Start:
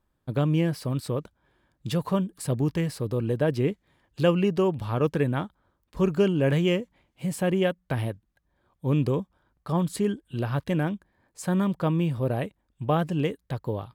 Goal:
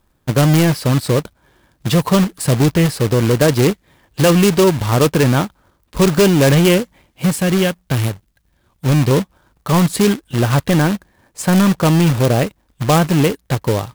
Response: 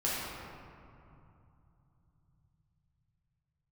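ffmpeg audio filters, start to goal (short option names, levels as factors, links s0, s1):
-filter_complex "[0:a]asettb=1/sr,asplit=3[s0][s1][s2];[s0]atrim=end=7.364[s3];[s1]atrim=start=7.36:end=9.11,asetpts=PTS-STARTPTS,afade=t=in:d=0.004:c=qsin,afade=t=out:st=1.746:d=0.004:c=qsin,equalizer=f=710:t=o:w=2.7:g=-8.5[s4];[s2]atrim=start=9.106[s5];[s3][s4]acrossfade=d=0.004:c1=hsin:c2=qsin[s6];[s6][s5]acrossfade=d=0.004:c1=qsin:c2=hsin,apsyclip=7.5,acrusher=bits=2:mode=log:mix=0:aa=0.000001,volume=0.562"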